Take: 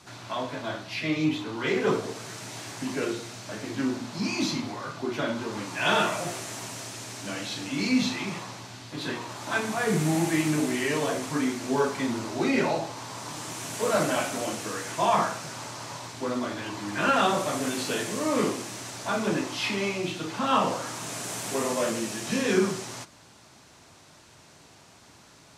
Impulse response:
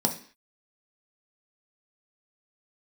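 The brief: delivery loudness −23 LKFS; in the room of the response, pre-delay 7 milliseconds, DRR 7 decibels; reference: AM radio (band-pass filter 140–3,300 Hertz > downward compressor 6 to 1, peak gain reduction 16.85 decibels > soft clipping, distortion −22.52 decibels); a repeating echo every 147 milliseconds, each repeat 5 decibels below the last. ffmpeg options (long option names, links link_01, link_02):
-filter_complex "[0:a]aecho=1:1:147|294|441|588|735|882|1029:0.562|0.315|0.176|0.0988|0.0553|0.031|0.0173,asplit=2[link_01][link_02];[1:a]atrim=start_sample=2205,adelay=7[link_03];[link_02][link_03]afir=irnorm=-1:irlink=0,volume=-16.5dB[link_04];[link_01][link_04]amix=inputs=2:normalize=0,highpass=140,lowpass=3300,acompressor=threshold=-34dB:ratio=6,asoftclip=threshold=-27.5dB,volume=15dB"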